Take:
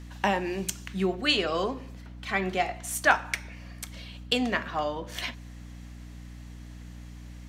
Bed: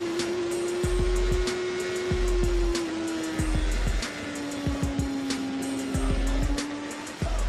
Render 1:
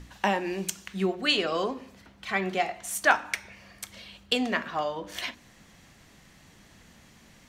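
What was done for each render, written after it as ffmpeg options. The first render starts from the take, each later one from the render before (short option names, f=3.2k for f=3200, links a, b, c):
-af "bandreject=f=60:t=h:w=4,bandreject=f=120:t=h:w=4,bandreject=f=180:t=h:w=4,bandreject=f=240:t=h:w=4,bandreject=f=300:t=h:w=4"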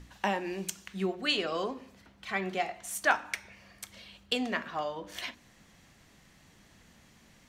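-af "volume=-4.5dB"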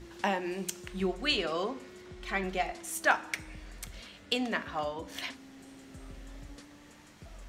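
-filter_complex "[1:a]volume=-21.5dB[a];[0:a][a]amix=inputs=2:normalize=0"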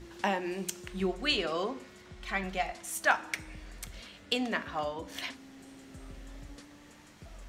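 -filter_complex "[0:a]asettb=1/sr,asplit=3[a][b][c];[a]atrim=end=1.834[d];[b]atrim=start=1.83:end=3.19,asetpts=PTS-STARTPTS,afade=t=in:d=0.004:c=qsin,afade=t=out:st=1.356:d=0.004:c=qsin,equalizer=f=360:t=o:w=0.64:g=-7[e];[c]atrim=start=3.186[f];[d][e]acrossfade=d=0.004:c1=hsin:c2=qsin[g];[g][f]acrossfade=d=0.004:c1=qsin:c2=hsin"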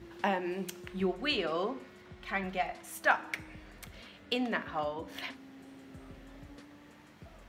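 -af "highpass=72,equalizer=f=7.4k:t=o:w=1.6:g=-10"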